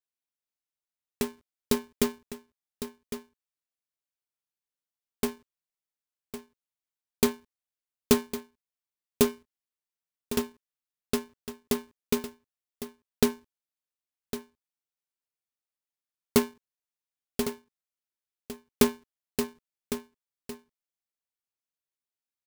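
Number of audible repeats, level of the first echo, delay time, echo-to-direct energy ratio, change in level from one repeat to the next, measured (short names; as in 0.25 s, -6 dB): 1, -11.5 dB, 1.106 s, -11.5 dB, no steady repeat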